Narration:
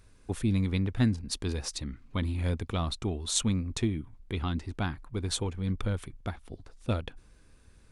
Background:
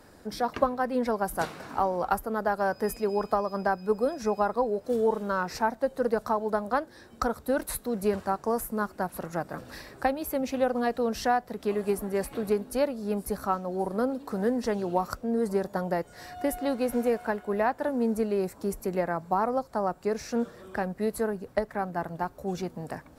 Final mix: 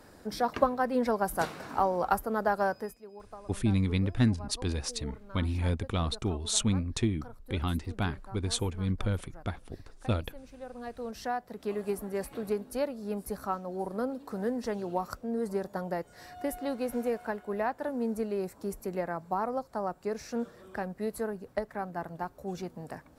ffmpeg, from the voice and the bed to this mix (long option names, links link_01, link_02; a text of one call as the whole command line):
ffmpeg -i stem1.wav -i stem2.wav -filter_complex "[0:a]adelay=3200,volume=0.5dB[link_01];[1:a]volume=15dB,afade=type=out:start_time=2.62:duration=0.33:silence=0.1,afade=type=in:start_time=10.57:duration=1.16:silence=0.16788[link_02];[link_01][link_02]amix=inputs=2:normalize=0" out.wav